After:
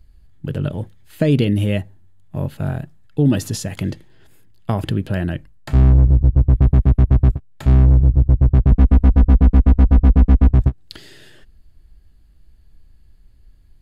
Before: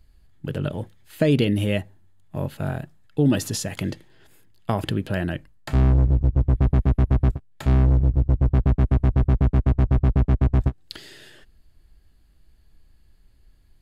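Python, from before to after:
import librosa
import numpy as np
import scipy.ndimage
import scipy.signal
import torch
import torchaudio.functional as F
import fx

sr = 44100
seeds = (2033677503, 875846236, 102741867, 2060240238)

y = fx.low_shelf(x, sr, hz=230.0, db=7.0)
y = fx.comb(y, sr, ms=4.1, depth=0.96, at=(8.71, 10.51))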